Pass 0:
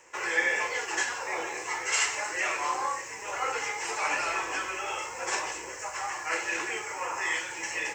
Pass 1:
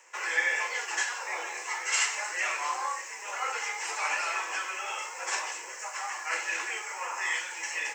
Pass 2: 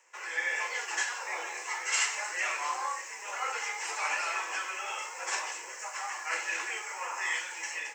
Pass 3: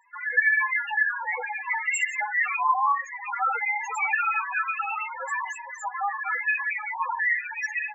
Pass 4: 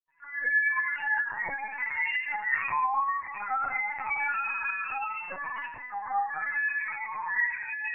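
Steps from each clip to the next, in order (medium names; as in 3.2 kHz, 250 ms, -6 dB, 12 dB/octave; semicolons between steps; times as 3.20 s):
Bessel high-pass 780 Hz, order 2
level rider gain up to 6 dB; trim -7.5 dB
in parallel at -1 dB: peak limiter -24.5 dBFS, peak gain reduction 8.5 dB; on the sum: loudest bins only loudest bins 4; trim +8.5 dB
reverberation RT60 0.80 s, pre-delay 76 ms; LPC vocoder at 8 kHz pitch kept; trim +1.5 dB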